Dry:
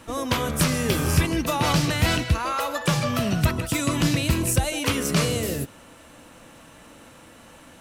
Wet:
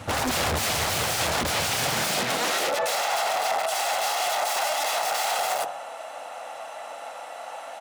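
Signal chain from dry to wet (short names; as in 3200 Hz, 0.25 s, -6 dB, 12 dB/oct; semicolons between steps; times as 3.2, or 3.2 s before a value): wrapped overs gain 24.5 dB; bell 790 Hz +6 dB 0.52 oct; high-pass sweep 87 Hz -> 710 Hz, 1.64–3.04; high shelf 9400 Hz -7.5 dB; comb 1.5 ms, depth 41%; de-hum 45.24 Hz, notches 39; limiter -23 dBFS, peak gain reduction 9.5 dB; Doppler distortion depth 0.98 ms; gain +6.5 dB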